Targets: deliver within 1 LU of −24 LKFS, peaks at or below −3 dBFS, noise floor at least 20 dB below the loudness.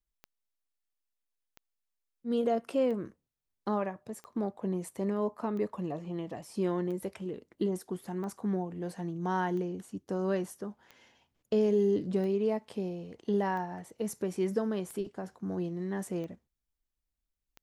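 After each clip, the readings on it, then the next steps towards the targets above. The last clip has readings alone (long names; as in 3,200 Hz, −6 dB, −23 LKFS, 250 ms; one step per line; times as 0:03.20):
number of clicks 14; integrated loudness −33.5 LKFS; sample peak −18.0 dBFS; target loudness −24.0 LKFS
→ click removal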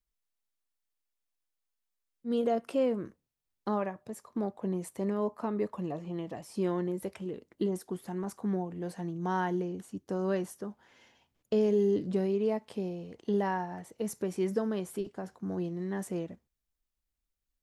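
number of clicks 0; integrated loudness −33.5 LKFS; sample peak −18.0 dBFS; target loudness −24.0 LKFS
→ level +9.5 dB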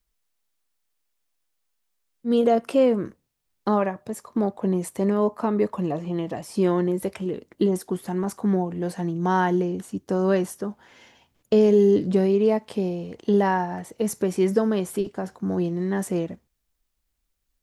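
integrated loudness −24.0 LKFS; sample peak −8.5 dBFS; background noise floor −76 dBFS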